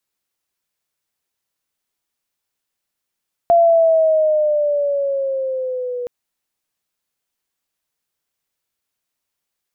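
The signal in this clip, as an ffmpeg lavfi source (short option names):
-f lavfi -i "aevalsrc='pow(10,(-8-14*t/2.57)/20)*sin(2*PI*687*2.57/(-6*log(2)/12)*(exp(-6*log(2)/12*t/2.57)-1))':d=2.57:s=44100"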